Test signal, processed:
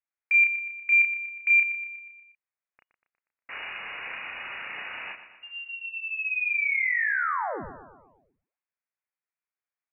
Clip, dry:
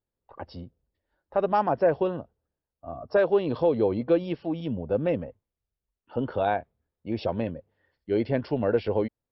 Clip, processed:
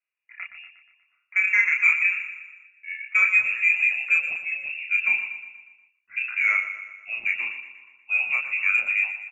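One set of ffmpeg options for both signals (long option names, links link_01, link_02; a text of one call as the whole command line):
ffmpeg -i in.wav -filter_complex "[0:a]acrossover=split=340 2100:gain=0.2 1 0.2[link_01][link_02][link_03];[link_01][link_02][link_03]amix=inputs=3:normalize=0,lowpass=frequency=2500:width_type=q:width=0.5098,lowpass=frequency=2500:width_type=q:width=0.6013,lowpass=frequency=2500:width_type=q:width=0.9,lowpass=frequency=2500:width_type=q:width=2.563,afreqshift=-2900,acontrast=83,asplit=2[link_04][link_05];[link_05]adelay=32,volume=-3dB[link_06];[link_04][link_06]amix=inputs=2:normalize=0,aecho=1:1:120|240|360|480|600|720:0.282|0.152|0.0822|0.0444|0.024|0.0129,volume=-4.5dB" out.wav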